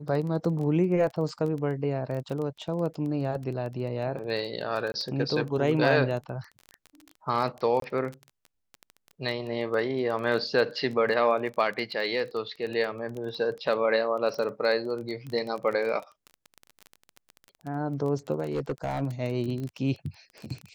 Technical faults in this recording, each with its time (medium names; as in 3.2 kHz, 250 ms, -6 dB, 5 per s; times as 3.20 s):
crackle 18 per s -32 dBFS
4.92–4.94 s: dropout 20 ms
7.80–7.82 s: dropout 23 ms
18.44–19.02 s: clipped -24 dBFS